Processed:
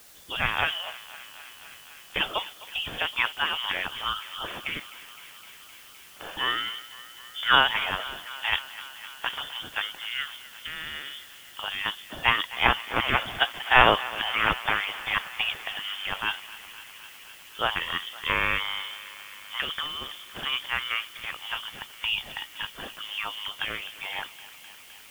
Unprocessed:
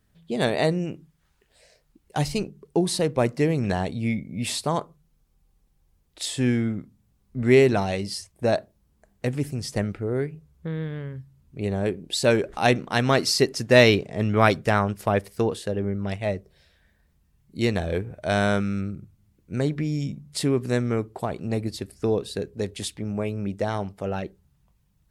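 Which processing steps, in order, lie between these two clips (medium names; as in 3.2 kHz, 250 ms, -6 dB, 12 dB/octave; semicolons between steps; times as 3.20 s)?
spectral gate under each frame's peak -15 dB weak; frequency inversion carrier 3.5 kHz; on a send: thinning echo 257 ms, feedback 84%, high-pass 510 Hz, level -17 dB; on the sum: word length cut 10-bit, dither triangular; trim +8.5 dB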